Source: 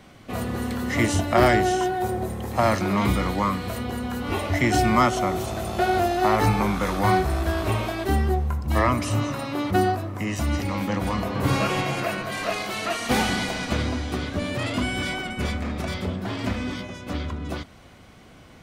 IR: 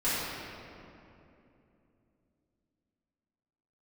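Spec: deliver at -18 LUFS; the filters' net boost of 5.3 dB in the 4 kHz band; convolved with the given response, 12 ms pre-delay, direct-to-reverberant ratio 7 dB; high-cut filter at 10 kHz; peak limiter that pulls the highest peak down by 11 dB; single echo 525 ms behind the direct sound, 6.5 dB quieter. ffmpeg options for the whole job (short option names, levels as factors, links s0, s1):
-filter_complex "[0:a]lowpass=10000,equalizer=f=4000:t=o:g=7,alimiter=limit=0.133:level=0:latency=1,aecho=1:1:525:0.473,asplit=2[s0][s1];[1:a]atrim=start_sample=2205,adelay=12[s2];[s1][s2]afir=irnorm=-1:irlink=0,volume=0.119[s3];[s0][s3]amix=inputs=2:normalize=0,volume=2.37"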